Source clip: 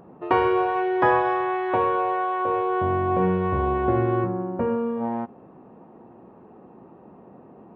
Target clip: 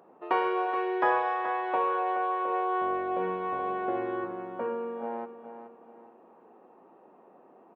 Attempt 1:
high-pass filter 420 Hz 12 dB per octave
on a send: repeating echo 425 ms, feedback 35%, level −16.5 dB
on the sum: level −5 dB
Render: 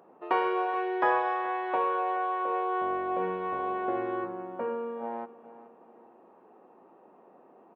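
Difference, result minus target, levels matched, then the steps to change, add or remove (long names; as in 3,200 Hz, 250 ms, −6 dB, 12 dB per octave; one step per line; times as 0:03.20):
echo-to-direct −6 dB
change: repeating echo 425 ms, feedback 35%, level −10.5 dB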